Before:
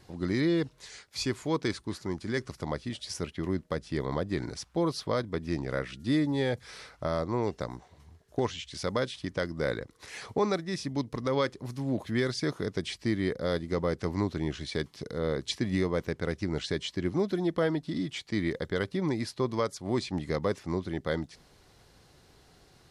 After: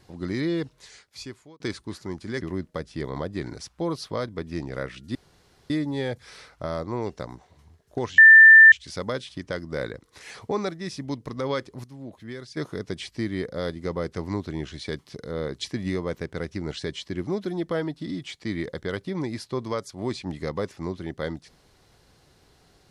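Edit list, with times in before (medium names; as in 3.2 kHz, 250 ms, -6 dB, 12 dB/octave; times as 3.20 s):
0.77–1.60 s: fade out
2.41–3.37 s: delete
6.11 s: insert room tone 0.55 s
8.59 s: add tone 1.78 kHz -6.5 dBFS 0.54 s
11.71–12.44 s: gain -9.5 dB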